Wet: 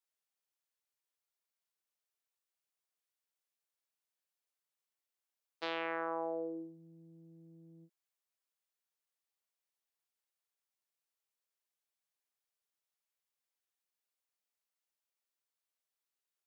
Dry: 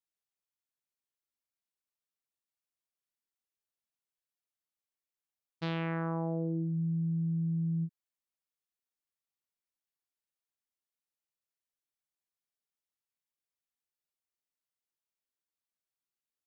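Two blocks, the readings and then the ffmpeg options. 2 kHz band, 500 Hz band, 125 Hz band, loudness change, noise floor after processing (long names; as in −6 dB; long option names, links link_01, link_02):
+1.0 dB, 0.0 dB, −29.0 dB, −5.5 dB, below −85 dBFS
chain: -af "highpass=frequency=390:width=0.5412,highpass=frequency=390:width=1.3066,volume=1dB"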